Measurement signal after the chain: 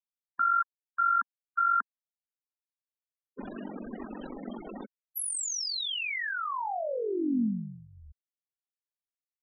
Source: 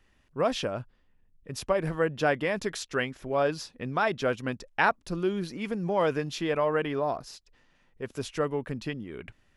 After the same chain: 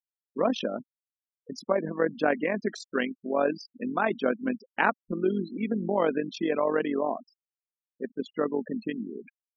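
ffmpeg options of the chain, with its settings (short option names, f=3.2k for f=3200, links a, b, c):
-af "tremolo=f=46:d=0.667,lowshelf=f=160:t=q:w=3:g=-12,afftfilt=real='re*gte(hypot(re,im),0.02)':imag='im*gte(hypot(re,im),0.02)':win_size=1024:overlap=0.75,volume=2dB"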